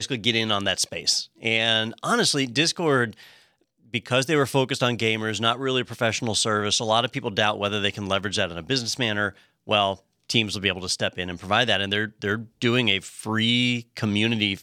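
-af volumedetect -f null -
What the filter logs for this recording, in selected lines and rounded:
mean_volume: -24.5 dB
max_volume: -4.1 dB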